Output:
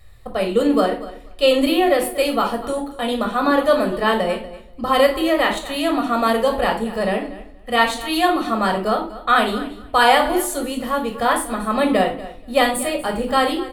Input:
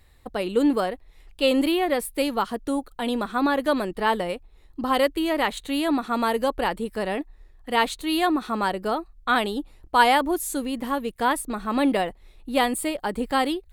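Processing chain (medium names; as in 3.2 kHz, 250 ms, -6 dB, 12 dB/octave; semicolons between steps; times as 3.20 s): feedback delay 239 ms, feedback 17%, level -16.5 dB; reverberation RT60 0.40 s, pre-delay 18 ms, DRR 3.5 dB; trim +2 dB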